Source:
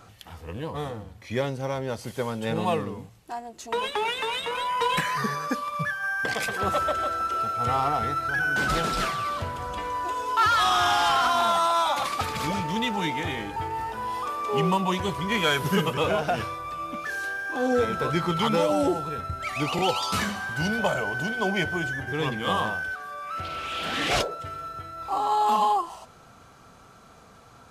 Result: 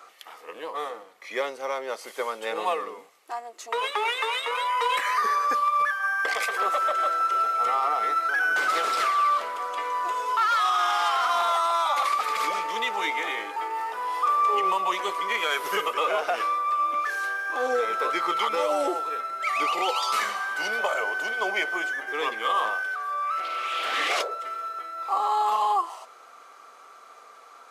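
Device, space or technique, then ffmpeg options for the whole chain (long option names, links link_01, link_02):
laptop speaker: -af "highpass=frequency=400:width=0.5412,highpass=frequency=400:width=1.3066,equalizer=frequency=1200:width_type=o:width=0.2:gain=10.5,equalizer=frequency=2100:width_type=o:width=0.29:gain=6.5,alimiter=limit=-15.5dB:level=0:latency=1:release=99"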